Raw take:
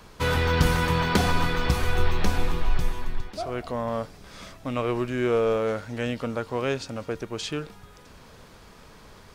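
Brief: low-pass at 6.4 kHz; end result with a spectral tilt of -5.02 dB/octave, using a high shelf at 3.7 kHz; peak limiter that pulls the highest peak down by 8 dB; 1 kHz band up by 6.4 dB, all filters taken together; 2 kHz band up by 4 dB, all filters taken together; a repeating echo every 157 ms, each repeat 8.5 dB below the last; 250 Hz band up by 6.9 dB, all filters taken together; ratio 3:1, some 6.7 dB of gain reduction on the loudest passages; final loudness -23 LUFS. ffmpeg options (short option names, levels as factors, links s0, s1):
-af "lowpass=6400,equalizer=f=250:t=o:g=8.5,equalizer=f=1000:t=o:g=6.5,equalizer=f=2000:t=o:g=3.5,highshelf=f=3700:g=-4,acompressor=threshold=0.0794:ratio=3,alimiter=limit=0.119:level=0:latency=1,aecho=1:1:157|314|471|628:0.376|0.143|0.0543|0.0206,volume=2.11"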